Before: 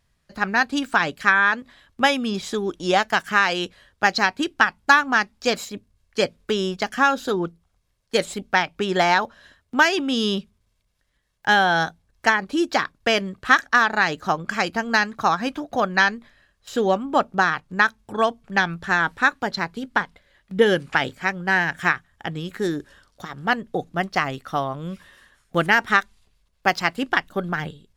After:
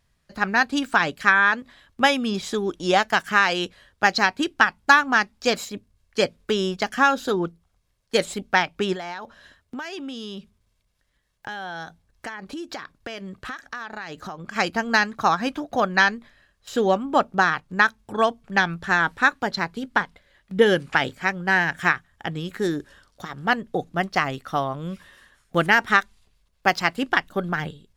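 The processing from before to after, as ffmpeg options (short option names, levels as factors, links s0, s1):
-filter_complex "[0:a]asettb=1/sr,asplit=3[s0][s1][s2];[s0]atrim=end=8.934[s3];[s1]atrim=start=8.93:end=14.56,asetpts=PTS-STARTPTS,afade=t=in:d=0.004:c=qsin,afade=t=out:st=5.626:d=0.004:c=qsin,acompressor=threshold=0.0282:ratio=6:attack=3.2:release=140:knee=1:detection=peak[s4];[s2]atrim=start=14.556[s5];[s3][s4]acrossfade=d=0.004:c1=hsin:c2=qsin[s6];[s6][s5]acrossfade=d=0.004:c1=qsin:c2=hsin"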